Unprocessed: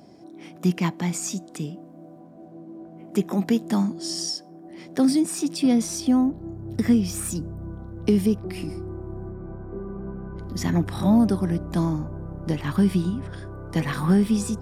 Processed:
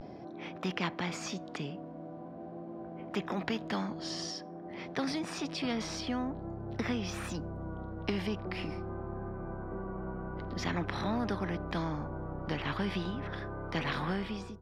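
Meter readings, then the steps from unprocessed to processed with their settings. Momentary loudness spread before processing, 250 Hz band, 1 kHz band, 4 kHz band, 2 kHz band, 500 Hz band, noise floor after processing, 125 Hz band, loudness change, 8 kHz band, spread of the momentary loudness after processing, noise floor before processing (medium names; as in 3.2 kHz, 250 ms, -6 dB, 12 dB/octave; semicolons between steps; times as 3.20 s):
16 LU, -14.0 dB, -3.5 dB, -5.0 dB, -1.0 dB, -8.0 dB, -46 dBFS, -11.5 dB, -12.5 dB, -15.0 dB, 10 LU, -46 dBFS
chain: fade out at the end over 0.60 s; vibrato 0.47 Hz 52 cents; distance through air 270 m; spectrum-flattening compressor 2:1; trim -6.5 dB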